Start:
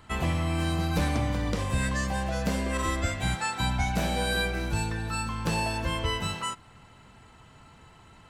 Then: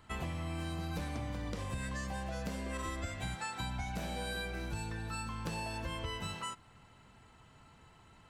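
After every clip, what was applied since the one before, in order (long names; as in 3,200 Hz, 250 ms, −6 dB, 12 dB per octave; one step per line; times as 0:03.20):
downward compressor, threshold −28 dBFS, peak gain reduction 6.5 dB
level −7 dB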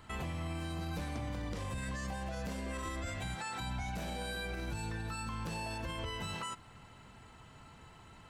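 brickwall limiter −35.5 dBFS, peak gain reduction 9.5 dB
level +4.5 dB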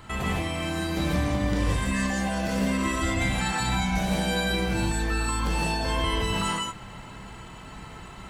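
reverb whose tail is shaped and stops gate 190 ms rising, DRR −3.5 dB
level +8.5 dB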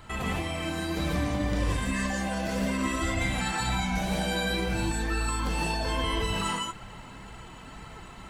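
flanger 1.9 Hz, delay 1.2 ms, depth 3.3 ms, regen +66%
level +2 dB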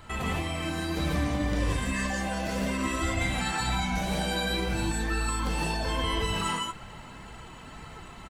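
double-tracking delay 13 ms −13 dB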